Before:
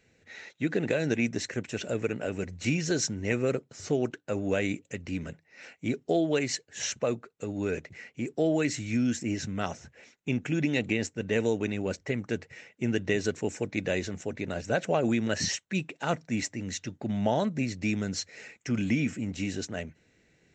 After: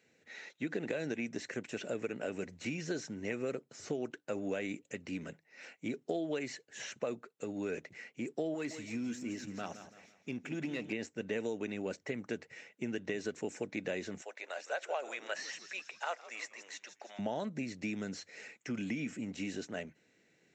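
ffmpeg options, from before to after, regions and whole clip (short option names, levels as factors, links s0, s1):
-filter_complex "[0:a]asettb=1/sr,asplit=3[s0][s1][s2];[s0]atrim=end=8.544[s3];[s1]atrim=start=8.54:end=10.93,asetpts=PTS-STARTPTS,afade=t=in:d=0.004:c=qsin,afade=t=out:st=2.386:d=0.004:c=qsin,aeval=exprs='if(lt(val(0),0),0.708*val(0),val(0))':c=same,aeval=exprs='(tanh(7.08*val(0)+0.55)-tanh(0.55))/7.08':c=same,aecho=1:1:167|334|501|668:0.251|0.0955|0.0363|0.0138,atrim=end_sample=105399[s4];[s2]atrim=start=10.926[s5];[s3][s4]acrossfade=d=0.004:c1=hsin:c2=qsin[s6];[s6][s5]acrossfade=d=0.004:c1=qsin:c2=hsin,asettb=1/sr,asplit=3[s7][s8][s9];[s7]atrim=end=14.224[s10];[s8]atrim=start=14.22:end=17.19,asetpts=PTS-STARTPTS,afade=t=in:d=0.004:c=qsin,afade=t=out:st=2.966:d=0.004:c=qsin,highpass=f=600:w=0.5412,highpass=f=600:w=1.3066,asplit=6[s11][s12][s13][s14][s15][s16];[s12]adelay=160,afreqshift=-100,volume=0.112[s17];[s13]adelay=320,afreqshift=-200,volume=0.0661[s18];[s14]adelay=480,afreqshift=-300,volume=0.0389[s19];[s15]adelay=640,afreqshift=-400,volume=0.0232[s20];[s16]adelay=800,afreqshift=-500,volume=0.0136[s21];[s11][s17][s18][s19][s20][s21]amix=inputs=6:normalize=0,atrim=end_sample=130977[s22];[s9]atrim=start=17.186[s23];[s10][s22]acrossfade=d=0.004:c1=hsin:c2=qsin[s24];[s24][s23]acrossfade=d=0.004:c1=qsin:c2=hsin,acompressor=threshold=0.0398:ratio=6,highpass=190,acrossover=split=2800[s25][s26];[s26]acompressor=threshold=0.00708:ratio=4:attack=1:release=60[s27];[s25][s27]amix=inputs=2:normalize=0,volume=0.668"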